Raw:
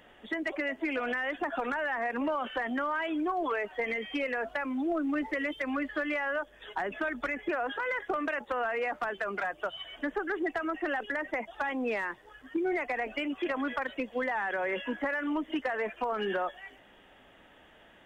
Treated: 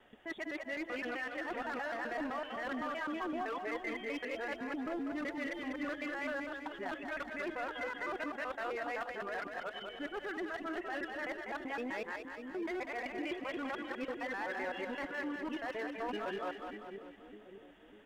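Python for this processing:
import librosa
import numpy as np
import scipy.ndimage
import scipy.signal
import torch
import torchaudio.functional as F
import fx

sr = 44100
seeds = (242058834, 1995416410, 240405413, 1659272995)

y = fx.local_reverse(x, sr, ms=128.0)
y = np.clip(10.0 ** (27.5 / 20.0) * y, -1.0, 1.0) / 10.0 ** (27.5 / 20.0)
y = fx.echo_split(y, sr, split_hz=460.0, low_ms=598, high_ms=195, feedback_pct=52, wet_db=-5.5)
y = y * 10.0 ** (-7.5 / 20.0)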